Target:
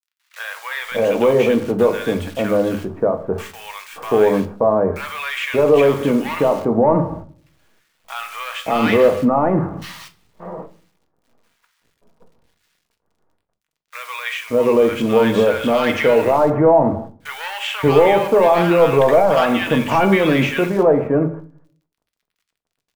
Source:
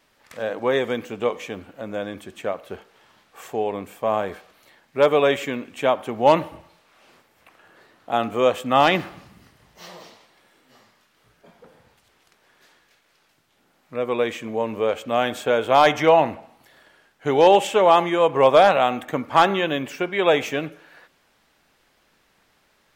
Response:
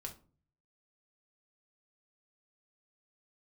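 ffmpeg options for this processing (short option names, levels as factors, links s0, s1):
-filter_complex "[0:a]acrossover=split=3300[s0][s1];[s1]acompressor=threshold=0.00631:ratio=4:attack=1:release=60[s2];[s0][s2]amix=inputs=2:normalize=0,aemphasis=mode=reproduction:type=50fm,bandreject=f=740:w=12,agate=range=0.126:threshold=0.00631:ratio=16:detection=peak,acontrast=83,alimiter=limit=0.251:level=0:latency=1,acrusher=bits=8:dc=4:mix=0:aa=0.000001,acrossover=split=1200[s3][s4];[s3]adelay=580[s5];[s5][s4]amix=inputs=2:normalize=0,asplit=2[s6][s7];[1:a]atrim=start_sample=2205[s8];[s7][s8]afir=irnorm=-1:irlink=0,volume=2.11[s9];[s6][s9]amix=inputs=2:normalize=0,volume=0.891"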